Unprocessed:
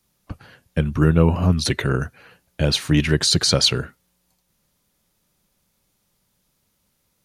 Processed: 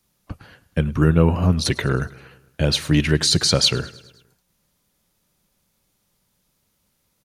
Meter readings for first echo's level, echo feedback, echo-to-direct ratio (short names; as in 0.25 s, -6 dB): -21.5 dB, 59%, -19.5 dB